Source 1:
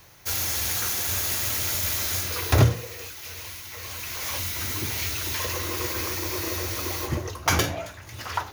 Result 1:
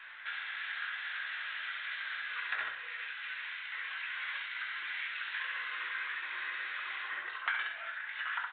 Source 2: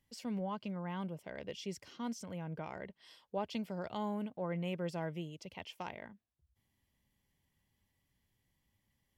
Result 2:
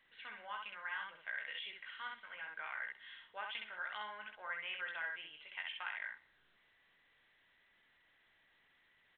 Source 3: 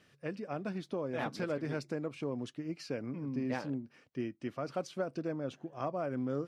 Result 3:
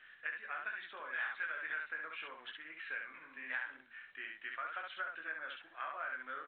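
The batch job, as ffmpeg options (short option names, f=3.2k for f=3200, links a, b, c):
-filter_complex "[0:a]highpass=f=1.6k:t=q:w=4.7,asplit=2[a][b];[b]aecho=0:1:19|66:0.562|0.668[c];[a][c]amix=inputs=2:normalize=0,acompressor=threshold=-38dB:ratio=3,asplit=2[d][e];[e]aecho=0:1:65|130|195|260:0.112|0.055|0.0269|0.0132[f];[d][f]amix=inputs=2:normalize=0" -ar 8000 -c:a pcm_alaw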